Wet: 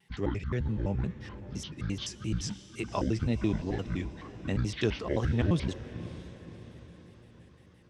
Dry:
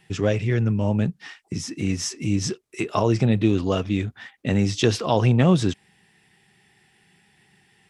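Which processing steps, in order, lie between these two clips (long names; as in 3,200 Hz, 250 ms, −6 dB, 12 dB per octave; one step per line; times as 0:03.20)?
pitch shifter gated in a rhythm −9.5 semitones, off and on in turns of 86 ms
tape wow and flutter 92 cents
feedback delay with all-pass diffusion 549 ms, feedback 51%, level −14 dB
level −9 dB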